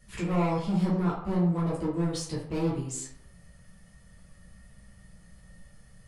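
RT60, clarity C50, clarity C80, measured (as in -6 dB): 0.70 s, 4.0 dB, 8.0 dB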